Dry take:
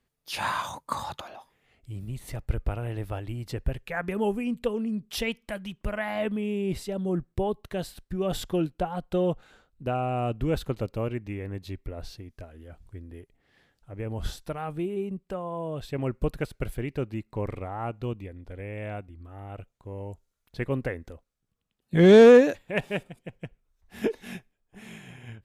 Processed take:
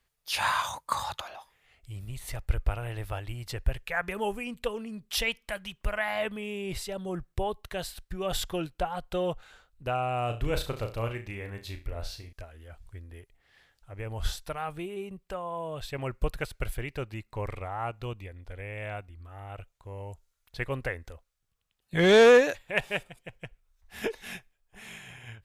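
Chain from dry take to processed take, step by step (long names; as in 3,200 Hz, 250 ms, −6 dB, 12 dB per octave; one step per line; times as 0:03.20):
parametric band 240 Hz −14 dB 2.2 octaves
0:10.26–0:12.33: flutter between parallel walls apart 6 metres, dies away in 0.29 s
level +4 dB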